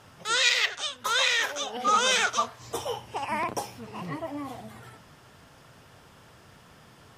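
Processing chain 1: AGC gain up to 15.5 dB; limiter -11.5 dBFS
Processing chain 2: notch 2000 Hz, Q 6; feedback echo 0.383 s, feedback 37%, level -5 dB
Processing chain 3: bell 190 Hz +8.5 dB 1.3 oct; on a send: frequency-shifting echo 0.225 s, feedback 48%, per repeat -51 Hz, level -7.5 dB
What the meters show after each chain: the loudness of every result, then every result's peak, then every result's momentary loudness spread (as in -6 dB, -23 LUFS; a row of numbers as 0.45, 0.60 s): -22.0, -25.5, -25.0 LUFS; -11.5, -9.5, -8.5 dBFS; 18, 15, 13 LU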